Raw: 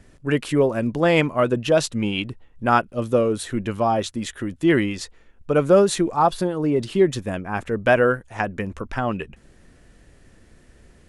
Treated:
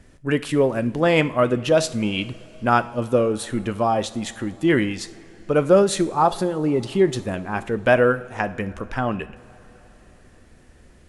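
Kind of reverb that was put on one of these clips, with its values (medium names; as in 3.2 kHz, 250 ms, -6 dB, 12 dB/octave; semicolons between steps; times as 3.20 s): two-slope reverb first 0.5 s, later 4.9 s, from -18 dB, DRR 12 dB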